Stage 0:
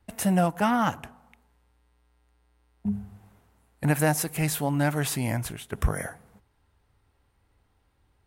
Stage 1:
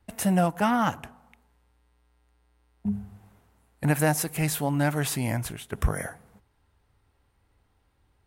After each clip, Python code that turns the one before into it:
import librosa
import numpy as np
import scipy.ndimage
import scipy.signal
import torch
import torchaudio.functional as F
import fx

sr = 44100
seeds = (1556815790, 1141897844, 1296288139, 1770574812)

y = x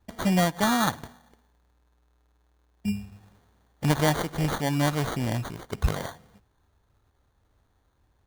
y = fx.sample_hold(x, sr, seeds[0], rate_hz=2600.0, jitter_pct=0)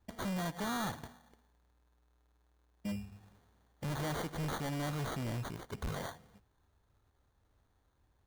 y = np.clip(10.0 ** (29.0 / 20.0) * x, -1.0, 1.0) / 10.0 ** (29.0 / 20.0)
y = y * 10.0 ** (-5.5 / 20.0)